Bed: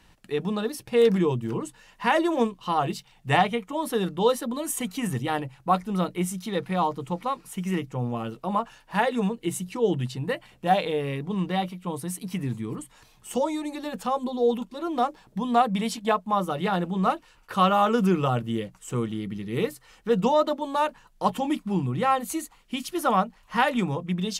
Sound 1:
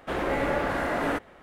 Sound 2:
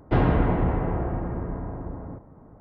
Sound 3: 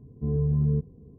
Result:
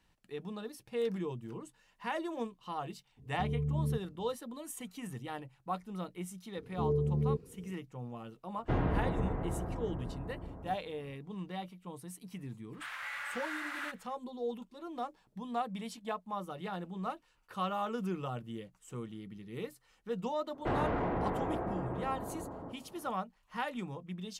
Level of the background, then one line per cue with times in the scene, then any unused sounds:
bed −14.5 dB
0:03.17: mix in 3 −9 dB + gate on every frequency bin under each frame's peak −45 dB strong
0:06.56: mix in 3 −10 dB + parametric band 470 Hz +13 dB 1.5 octaves
0:08.57: mix in 2 −10.5 dB
0:12.73: mix in 1 −6 dB + high-pass filter 1,300 Hz 24 dB per octave
0:20.54: mix in 2 −14 dB + mid-hump overdrive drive 22 dB, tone 1,100 Hz, clips at −9 dBFS

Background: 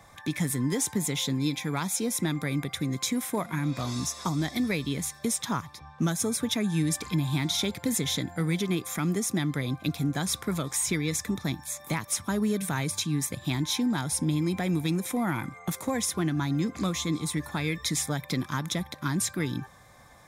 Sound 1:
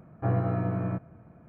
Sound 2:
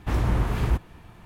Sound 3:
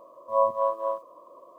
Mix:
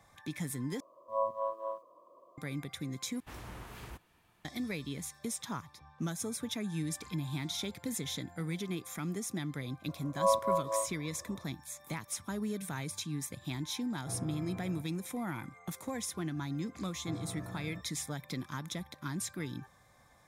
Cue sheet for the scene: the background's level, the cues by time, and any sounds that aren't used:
background −9.5 dB
0:00.80: overwrite with 3 −10 dB + low-shelf EQ 110 Hz +5.5 dB
0:03.20: overwrite with 2 −16.5 dB + spectral tilt +2.5 dB per octave
0:09.88: mix in 3 −5 dB
0:13.84: mix in 1 −16 dB
0:16.83: mix in 1 −16.5 dB

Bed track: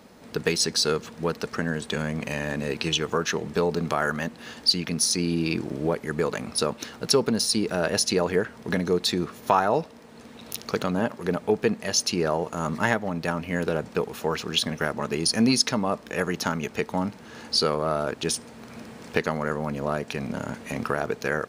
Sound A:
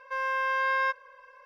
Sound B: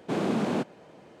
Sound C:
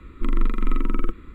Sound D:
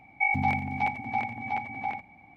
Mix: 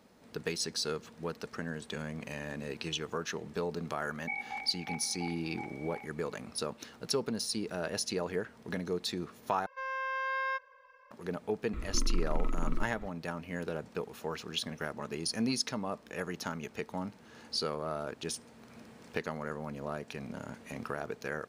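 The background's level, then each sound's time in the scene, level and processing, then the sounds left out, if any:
bed track −11 dB
0:04.07: mix in D −11 dB + high-pass filter 860 Hz
0:09.66: overwrite with A −7 dB + downsampling to 16,000 Hz
0:11.73: mix in C −10.5 dB + multiband upward and downward compressor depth 70%
not used: B

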